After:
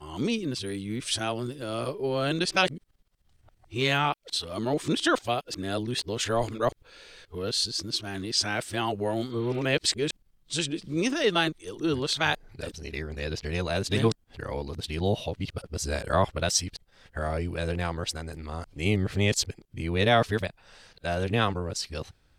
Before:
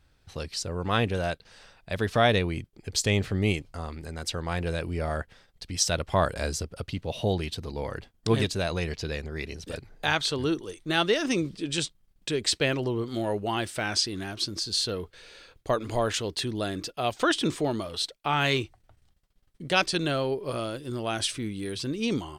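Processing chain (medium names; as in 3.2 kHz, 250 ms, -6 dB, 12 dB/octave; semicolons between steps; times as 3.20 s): reverse the whole clip; spectral replace 9.33–9.57 s, 1.2–4.5 kHz both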